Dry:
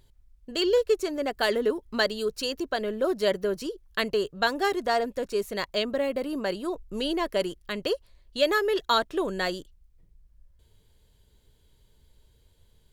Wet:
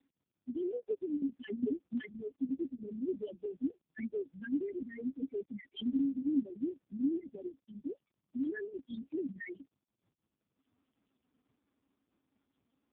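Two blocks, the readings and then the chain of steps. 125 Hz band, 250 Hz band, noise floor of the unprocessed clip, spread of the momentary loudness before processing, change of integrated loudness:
-9.5 dB, -2.0 dB, -62 dBFS, 8 LU, -10.5 dB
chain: reverb removal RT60 0.86 s; vowel filter i; bass shelf 220 Hz +4 dB; loudest bins only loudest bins 2; trim +9.5 dB; AMR-NB 4.75 kbps 8 kHz

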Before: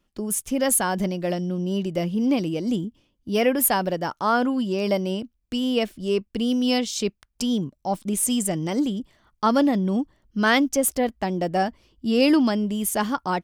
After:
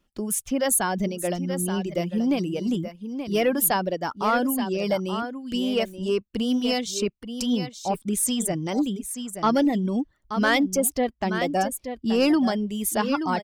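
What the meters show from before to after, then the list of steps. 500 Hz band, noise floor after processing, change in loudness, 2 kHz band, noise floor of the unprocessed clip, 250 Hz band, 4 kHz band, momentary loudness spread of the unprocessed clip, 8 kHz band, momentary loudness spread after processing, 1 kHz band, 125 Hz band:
-1.0 dB, -65 dBFS, -1.5 dB, -1.0 dB, -71 dBFS, -1.5 dB, -1.0 dB, 9 LU, -0.5 dB, 8 LU, -1.0 dB, -2.0 dB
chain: delay 878 ms -9.5 dB; saturation -10.5 dBFS, distortion -23 dB; reverb removal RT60 0.66 s

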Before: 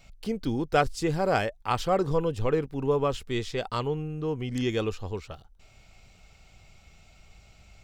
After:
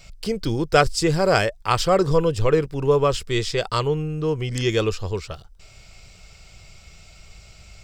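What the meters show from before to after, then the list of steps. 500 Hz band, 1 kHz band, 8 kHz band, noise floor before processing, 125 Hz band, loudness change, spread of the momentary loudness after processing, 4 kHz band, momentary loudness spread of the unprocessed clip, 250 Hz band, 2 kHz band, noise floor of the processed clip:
+7.0 dB, +5.5 dB, +12.0 dB, -57 dBFS, +7.5 dB, +7.0 dB, 10 LU, +10.0 dB, 9 LU, +4.5 dB, +8.0 dB, -48 dBFS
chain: graphic EQ with 31 bands 250 Hz -11 dB, 800 Hz -6 dB, 5 kHz +7 dB, 8 kHz +6 dB; trim +8 dB

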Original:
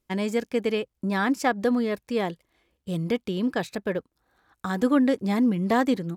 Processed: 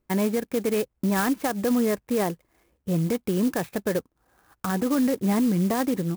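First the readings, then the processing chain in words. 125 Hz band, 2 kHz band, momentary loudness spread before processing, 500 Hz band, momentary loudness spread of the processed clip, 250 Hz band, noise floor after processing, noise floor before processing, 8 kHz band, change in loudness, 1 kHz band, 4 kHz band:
+3.5 dB, -3.0 dB, 10 LU, +0.5 dB, 7 LU, +0.5 dB, -75 dBFS, -79 dBFS, +8.5 dB, +0.5 dB, -1.5 dB, -1.5 dB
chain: low-pass 2.5 kHz 12 dB/octave; peak limiter -21 dBFS, peak gain reduction 10.5 dB; sampling jitter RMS 0.061 ms; trim +4.5 dB

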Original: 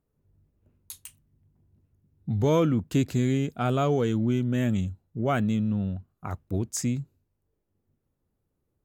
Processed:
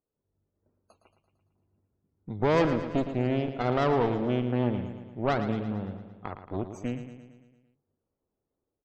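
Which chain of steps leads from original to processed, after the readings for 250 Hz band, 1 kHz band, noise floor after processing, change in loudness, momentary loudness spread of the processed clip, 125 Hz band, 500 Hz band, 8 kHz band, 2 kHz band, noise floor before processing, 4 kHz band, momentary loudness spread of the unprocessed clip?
-3.5 dB, +2.0 dB, under -85 dBFS, -2.0 dB, 15 LU, -5.5 dB, +0.5 dB, under -15 dB, +1.5 dB, -79 dBFS, -2.0 dB, 16 LU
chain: median filter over 25 samples; tone controls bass -13 dB, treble -1 dB; loudest bins only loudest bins 64; Chebyshev shaper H 6 -13 dB, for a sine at -14 dBFS; level rider gain up to 6 dB; on a send: feedback delay 113 ms, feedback 58%, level -10 dB; on the sum: trim -5 dB

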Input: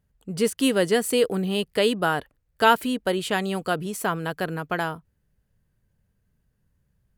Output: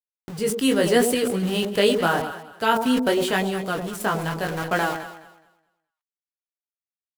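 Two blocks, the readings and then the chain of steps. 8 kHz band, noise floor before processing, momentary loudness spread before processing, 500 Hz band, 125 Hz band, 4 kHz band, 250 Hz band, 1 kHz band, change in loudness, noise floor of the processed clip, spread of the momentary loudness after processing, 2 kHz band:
+2.5 dB, -72 dBFS, 9 LU, +1.5 dB, +2.0 dB, +1.5 dB, +3.0 dB, +0.5 dB, +1.5 dB, under -85 dBFS, 9 LU, +1.5 dB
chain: chorus 0.84 Hz, delay 15.5 ms, depth 4.1 ms; small samples zeroed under -36.5 dBFS; random-step tremolo 3.5 Hz; on a send: echo whose repeats swap between lows and highs 105 ms, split 850 Hz, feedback 51%, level -7 dB; on the sum: decay stretcher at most 72 dB/s; trim +6.5 dB

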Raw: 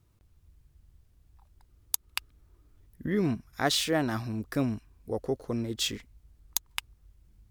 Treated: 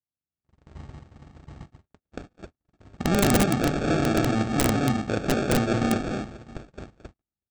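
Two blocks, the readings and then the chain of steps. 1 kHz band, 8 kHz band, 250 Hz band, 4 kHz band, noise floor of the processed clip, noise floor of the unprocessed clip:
+8.5 dB, +2.0 dB, +8.0 dB, -1.5 dB, under -85 dBFS, -65 dBFS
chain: spectral levelling over time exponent 0.6; high-pass 58 Hz 12 dB/octave; gated-style reverb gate 290 ms rising, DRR 0.5 dB; level rider gain up to 11 dB; tone controls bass +6 dB, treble -9 dB; feedback delay 639 ms, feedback 32%, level -19 dB; sample-rate reducer 1 kHz, jitter 0%; Chebyshev low-pass 8.4 kHz, order 10; treble shelf 3.1 kHz -6.5 dB; integer overflow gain 6 dB; gate -32 dBFS, range -50 dB; trim -7 dB

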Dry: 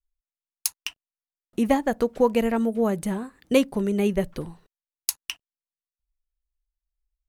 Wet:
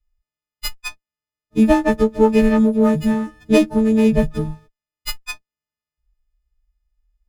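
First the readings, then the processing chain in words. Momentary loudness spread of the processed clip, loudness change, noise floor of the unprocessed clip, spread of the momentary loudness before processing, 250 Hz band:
16 LU, +8.0 dB, under -85 dBFS, 15 LU, +9.5 dB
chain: partials quantised in pitch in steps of 6 st; in parallel at -3.5 dB: one-sided clip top -8.5 dBFS; on the sum: RIAA curve playback; sliding maximum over 5 samples; trim -2 dB

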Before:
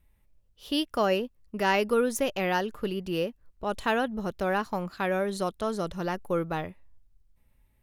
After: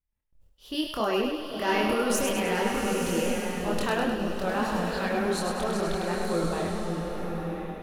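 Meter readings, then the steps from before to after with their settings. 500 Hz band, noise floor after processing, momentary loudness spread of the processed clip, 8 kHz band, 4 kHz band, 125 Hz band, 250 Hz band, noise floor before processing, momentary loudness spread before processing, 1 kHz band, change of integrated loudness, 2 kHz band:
+0.5 dB, -63 dBFS, 7 LU, +7.5 dB, +2.0 dB, +3.0 dB, +3.0 dB, -67 dBFS, 8 LU, +0.5 dB, +1.0 dB, +1.0 dB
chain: gate with hold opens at -54 dBFS; transient shaper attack 0 dB, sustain +12 dB; chorus voices 4, 1.2 Hz, delay 26 ms, depth 3.4 ms; on a send: two-band feedback delay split 470 Hz, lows 535 ms, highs 102 ms, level -5 dB; on the sum: swelling reverb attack 1020 ms, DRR 3 dB

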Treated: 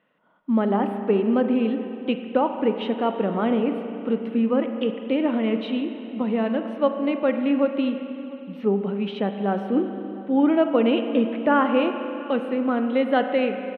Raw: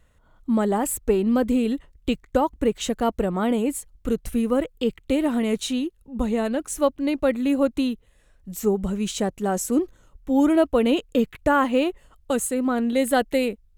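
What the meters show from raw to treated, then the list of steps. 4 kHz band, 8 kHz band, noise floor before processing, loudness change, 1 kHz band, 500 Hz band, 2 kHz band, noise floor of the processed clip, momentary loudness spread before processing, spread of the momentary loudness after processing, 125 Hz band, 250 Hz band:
-2.5 dB, under -40 dB, -59 dBFS, 0.0 dB, +1.0 dB, +0.5 dB, 0.0 dB, -38 dBFS, 8 LU, 8 LU, no reading, +0.5 dB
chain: elliptic band-pass 190–3000 Hz, stop band 40 dB; echo from a far wall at 120 m, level -21 dB; spring tank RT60 3 s, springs 35/45 ms, chirp 55 ms, DRR 6.5 dB

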